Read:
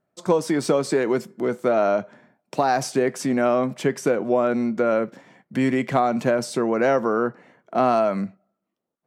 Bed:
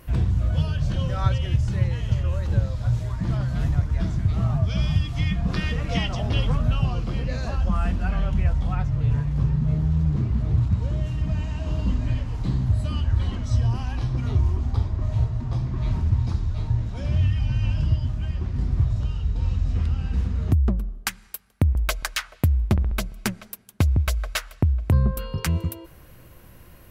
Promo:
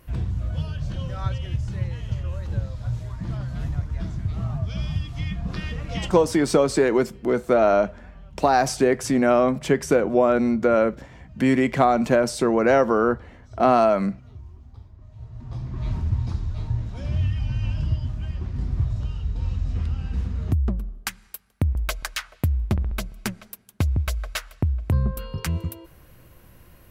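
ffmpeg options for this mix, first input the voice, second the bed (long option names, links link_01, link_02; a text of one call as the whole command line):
ffmpeg -i stem1.wav -i stem2.wav -filter_complex "[0:a]adelay=5850,volume=2dB[link_01];[1:a]volume=13.5dB,afade=type=out:start_time=6.1:duration=0.24:silence=0.158489,afade=type=in:start_time=15.18:duration=0.69:silence=0.11885[link_02];[link_01][link_02]amix=inputs=2:normalize=0" out.wav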